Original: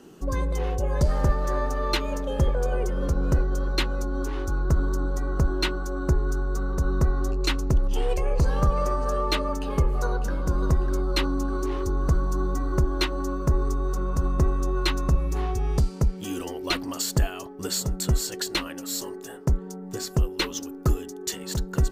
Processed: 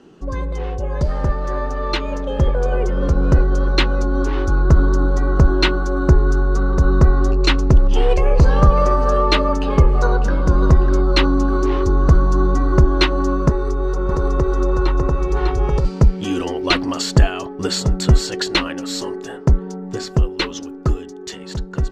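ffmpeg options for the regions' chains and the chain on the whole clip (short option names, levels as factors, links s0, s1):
-filter_complex "[0:a]asettb=1/sr,asplit=3[s0][s1][s2];[s0]atrim=end=13.494[s3];[s1]atrim=start=13.49:end=15.85,asetpts=PTS-STARTPTS,afade=t=in:d=0.004:c=qsin,afade=t=out:st=2.356:d=0.004:c=qsin,aecho=1:1:2.2:0.44,atrim=end_sample=104076,acrossover=split=250|1300[s4][s5][s6];[s4]acompressor=threshold=0.0316:ratio=4[s7];[s5]acompressor=threshold=0.0251:ratio=4[s8];[s6]acompressor=threshold=0.00447:ratio=4[s9];[s7][s8][s9]amix=inputs=3:normalize=0,aecho=1:1:600:0.708,atrim=end_sample=104076[s10];[s2]atrim=start=15.846[s11];[s3][s10]acrossfade=d=0.004:c1=hsin:c2=qsin[s12];[s12][s11]acrossfade=d=0.004:c1=qsin:c2=hsin,lowpass=4600,dynaudnorm=f=600:g=9:m=2.82,volume=1.26"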